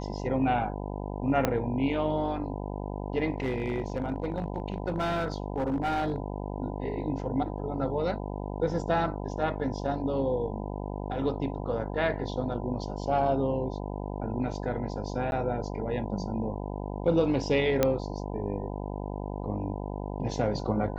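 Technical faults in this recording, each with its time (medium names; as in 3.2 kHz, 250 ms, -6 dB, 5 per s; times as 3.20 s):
buzz 50 Hz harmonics 20 -35 dBFS
1.45 s: pop -10 dBFS
3.34–6.16 s: clipped -24 dBFS
15.31–15.32 s: dropout 11 ms
17.83 s: pop -9 dBFS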